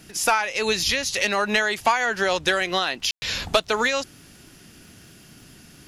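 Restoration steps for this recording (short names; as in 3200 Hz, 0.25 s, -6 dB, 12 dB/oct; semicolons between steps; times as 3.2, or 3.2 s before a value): de-click; room tone fill 3.11–3.22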